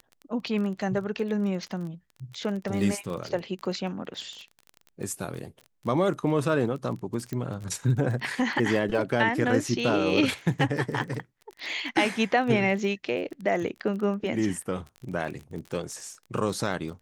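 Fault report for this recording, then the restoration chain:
crackle 24 per s -34 dBFS
7.33 s: pop -20 dBFS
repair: de-click

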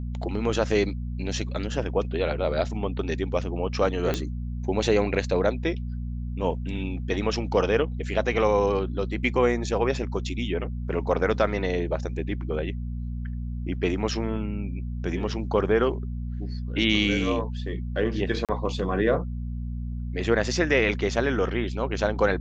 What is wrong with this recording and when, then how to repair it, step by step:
hum 60 Hz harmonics 4 -31 dBFS
4.14 s: pop -12 dBFS
18.45–18.49 s: dropout 37 ms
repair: de-click; de-hum 60 Hz, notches 4; interpolate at 18.45 s, 37 ms

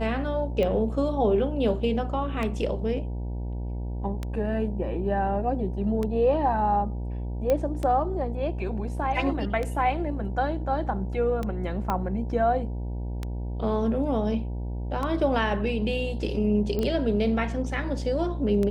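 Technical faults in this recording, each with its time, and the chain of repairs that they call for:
buzz 60 Hz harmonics 16 -31 dBFS
tick 33 1/3 rpm -17 dBFS
7.50 s: pop -13 dBFS
11.90 s: pop -14 dBFS
16.79 s: pop -17 dBFS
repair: de-click; de-hum 60 Hz, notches 16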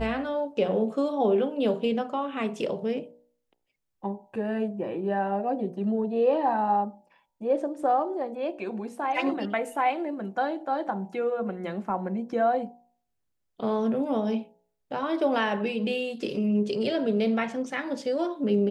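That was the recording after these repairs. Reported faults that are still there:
11.90 s: pop

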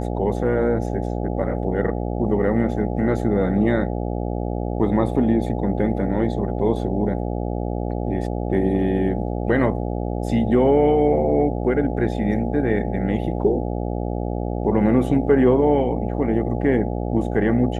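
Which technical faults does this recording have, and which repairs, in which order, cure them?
buzz 60 Hz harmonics 14 -25 dBFS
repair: de-hum 60 Hz, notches 14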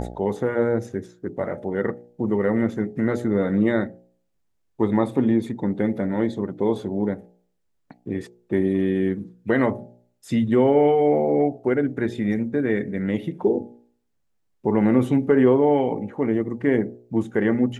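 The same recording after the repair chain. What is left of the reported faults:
nothing left

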